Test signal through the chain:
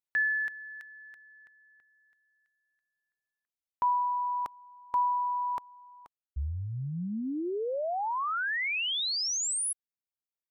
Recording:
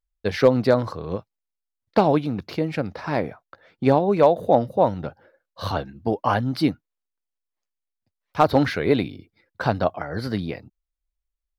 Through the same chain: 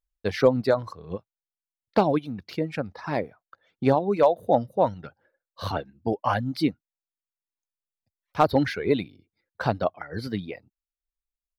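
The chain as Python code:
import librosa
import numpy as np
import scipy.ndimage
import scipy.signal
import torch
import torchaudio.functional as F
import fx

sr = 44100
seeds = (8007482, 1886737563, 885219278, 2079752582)

y = fx.dereverb_blind(x, sr, rt60_s=1.6)
y = y * librosa.db_to_amplitude(-2.5)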